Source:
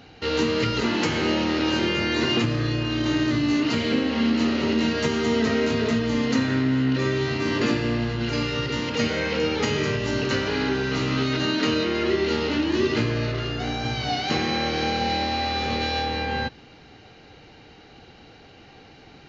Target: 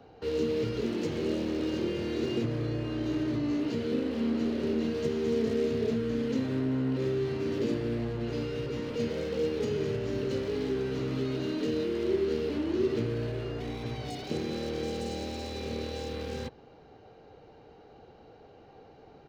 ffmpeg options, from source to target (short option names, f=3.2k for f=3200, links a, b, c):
-filter_complex "[0:a]firequalizer=gain_entry='entry(300,0);entry(430,8);entry(2000,-9)':delay=0.05:min_phase=1,acrossover=split=280|510|2000[a][b][c][d];[c]aeval=exprs='0.0158*(abs(mod(val(0)/0.0158+3,4)-2)-1)':c=same[e];[a][b][e][d]amix=inputs=4:normalize=0,volume=-7.5dB"